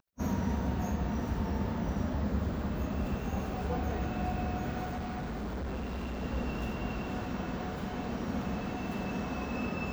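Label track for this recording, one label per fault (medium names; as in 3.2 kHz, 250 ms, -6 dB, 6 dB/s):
4.840000	6.230000	clipped -33.5 dBFS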